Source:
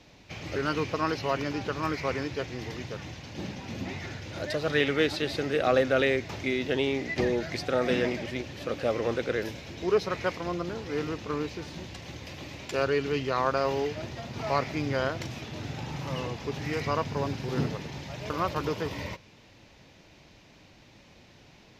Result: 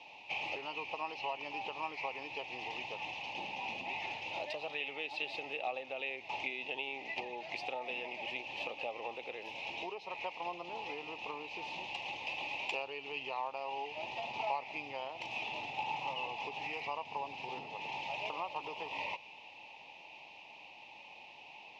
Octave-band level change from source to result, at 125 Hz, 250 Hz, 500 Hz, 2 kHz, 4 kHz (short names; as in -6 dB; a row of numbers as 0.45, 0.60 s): -26.0, -21.0, -15.5, -5.5, -5.5 dB